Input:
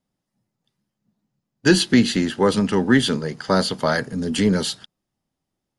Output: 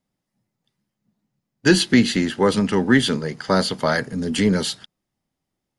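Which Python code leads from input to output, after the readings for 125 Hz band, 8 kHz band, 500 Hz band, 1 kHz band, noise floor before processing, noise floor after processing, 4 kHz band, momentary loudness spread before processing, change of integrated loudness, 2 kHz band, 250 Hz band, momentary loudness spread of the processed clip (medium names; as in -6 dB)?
0.0 dB, 0.0 dB, 0.0 dB, 0.0 dB, -82 dBFS, -82 dBFS, 0.0 dB, 8 LU, 0.0 dB, +1.5 dB, 0.0 dB, 8 LU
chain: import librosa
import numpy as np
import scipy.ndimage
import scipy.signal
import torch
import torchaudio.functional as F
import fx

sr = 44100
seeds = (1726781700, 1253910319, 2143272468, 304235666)

y = fx.peak_eq(x, sr, hz=2100.0, db=3.5, octaves=0.37)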